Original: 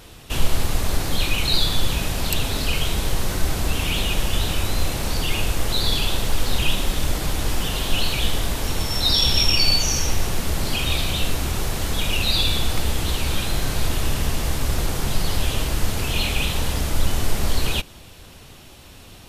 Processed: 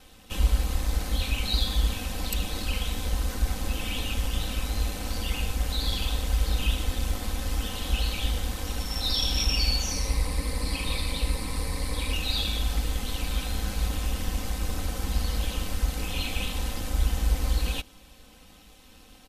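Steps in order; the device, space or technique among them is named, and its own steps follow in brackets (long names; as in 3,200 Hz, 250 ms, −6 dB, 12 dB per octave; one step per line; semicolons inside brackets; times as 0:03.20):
0:09.91–0:12.13: EQ curve with evenly spaced ripples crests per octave 0.93, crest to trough 10 dB
ring-modulated robot voice (ring modulation 54 Hz; comb filter 3.9 ms, depth 81%)
level −7.5 dB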